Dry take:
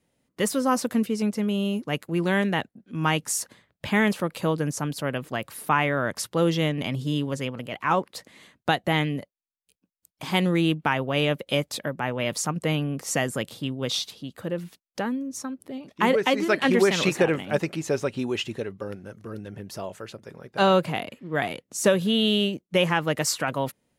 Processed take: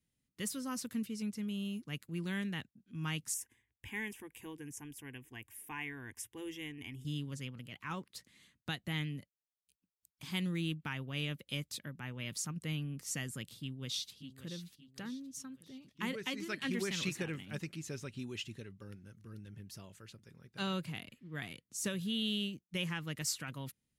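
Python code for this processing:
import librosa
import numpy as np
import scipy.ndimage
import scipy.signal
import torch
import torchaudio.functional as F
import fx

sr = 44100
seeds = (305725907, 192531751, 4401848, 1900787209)

y = fx.fixed_phaser(x, sr, hz=870.0, stages=8, at=(3.34, 7.05))
y = fx.echo_throw(y, sr, start_s=13.62, length_s=0.89, ms=580, feedback_pct=45, wet_db=-12.5)
y = fx.tone_stack(y, sr, knobs='6-0-2')
y = F.gain(torch.from_numpy(y), 5.0).numpy()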